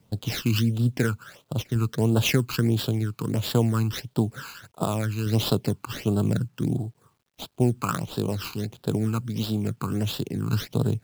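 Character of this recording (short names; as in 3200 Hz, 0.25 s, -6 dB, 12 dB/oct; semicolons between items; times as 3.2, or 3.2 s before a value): tremolo saw down 0.57 Hz, depth 35%; aliases and images of a low sample rate 9000 Hz, jitter 20%; phasing stages 12, 1.5 Hz, lowest notch 580–2100 Hz; a quantiser's noise floor 12-bit, dither none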